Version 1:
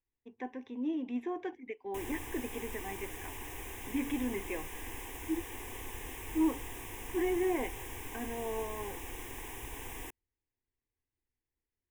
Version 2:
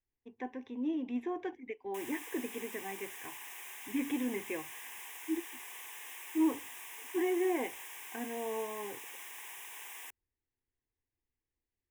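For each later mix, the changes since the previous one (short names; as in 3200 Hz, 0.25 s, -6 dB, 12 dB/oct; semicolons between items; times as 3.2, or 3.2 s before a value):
background: add HPF 1100 Hz 12 dB/oct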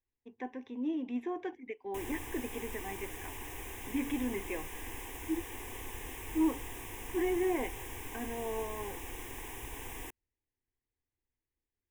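background: remove HPF 1100 Hz 12 dB/oct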